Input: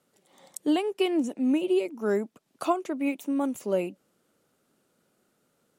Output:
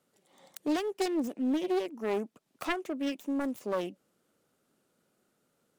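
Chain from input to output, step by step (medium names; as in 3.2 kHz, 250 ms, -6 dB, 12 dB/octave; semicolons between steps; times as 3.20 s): self-modulated delay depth 0.53 ms; in parallel at -6 dB: hard clipper -25 dBFS, distortion -10 dB; on the sum: trim -7 dB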